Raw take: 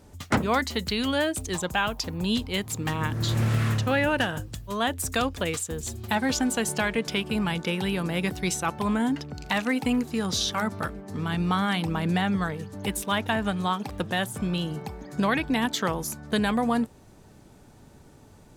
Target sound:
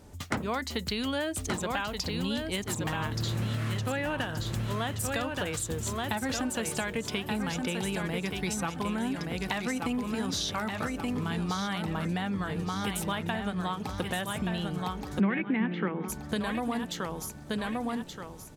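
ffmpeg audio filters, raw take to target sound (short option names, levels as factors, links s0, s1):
-filter_complex "[0:a]aecho=1:1:1176|2352|3528|4704:0.501|0.165|0.0546|0.018,acompressor=threshold=0.0398:ratio=6,asplit=3[s0][s1][s2];[s0]afade=t=out:st=15.19:d=0.02[s3];[s1]highpass=f=160:w=0.5412,highpass=f=160:w=1.3066,equalizer=f=200:t=q:w=4:g=10,equalizer=f=360:t=q:w=4:g=7,equalizer=f=660:t=q:w=4:g=-6,equalizer=f=1000:t=q:w=4:g=-4,equalizer=f=2200:t=q:w=4:g=8,lowpass=f=2400:w=0.5412,lowpass=f=2400:w=1.3066,afade=t=in:st=15.19:d=0.02,afade=t=out:st=16.08:d=0.02[s4];[s2]afade=t=in:st=16.08:d=0.02[s5];[s3][s4][s5]amix=inputs=3:normalize=0"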